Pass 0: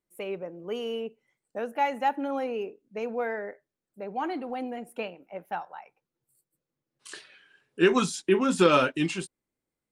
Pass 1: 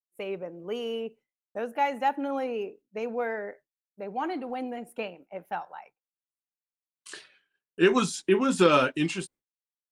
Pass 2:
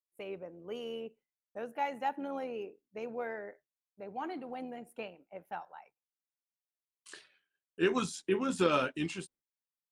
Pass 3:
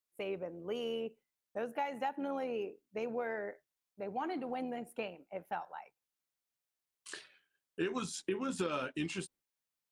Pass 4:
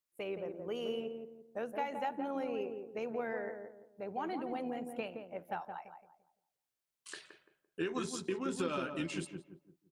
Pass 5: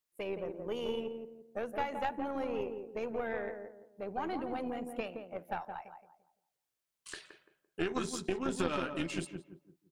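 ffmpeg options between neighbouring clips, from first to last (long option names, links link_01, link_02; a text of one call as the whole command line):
ffmpeg -i in.wav -af "agate=range=-33dB:threshold=-47dB:ratio=3:detection=peak" out.wav
ffmpeg -i in.wav -af "tremolo=f=82:d=0.333,volume=-6.5dB" out.wav
ffmpeg -i in.wav -af "acompressor=threshold=-37dB:ratio=6,volume=4dB" out.wav
ffmpeg -i in.wav -filter_complex "[0:a]asplit=2[link_01][link_02];[link_02]adelay=170,lowpass=frequency=890:poles=1,volume=-4.5dB,asplit=2[link_03][link_04];[link_04]adelay=170,lowpass=frequency=890:poles=1,volume=0.38,asplit=2[link_05][link_06];[link_06]adelay=170,lowpass=frequency=890:poles=1,volume=0.38,asplit=2[link_07][link_08];[link_08]adelay=170,lowpass=frequency=890:poles=1,volume=0.38,asplit=2[link_09][link_10];[link_10]adelay=170,lowpass=frequency=890:poles=1,volume=0.38[link_11];[link_01][link_03][link_05][link_07][link_09][link_11]amix=inputs=6:normalize=0,volume=-1dB" out.wav
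ffmpeg -i in.wav -af "aeval=exprs='0.075*(cos(1*acos(clip(val(0)/0.075,-1,1)))-cos(1*PI/2))+0.0299*(cos(2*acos(clip(val(0)/0.075,-1,1)))-cos(2*PI/2))':channel_layout=same,volume=1.5dB" out.wav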